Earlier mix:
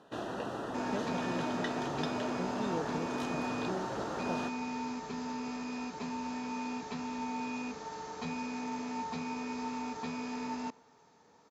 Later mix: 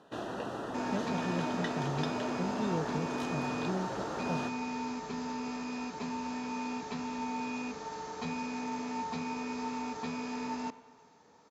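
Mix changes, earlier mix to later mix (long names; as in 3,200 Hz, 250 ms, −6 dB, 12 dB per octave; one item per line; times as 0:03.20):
speech: remove high-pass filter 240 Hz 12 dB per octave
second sound: send +10.0 dB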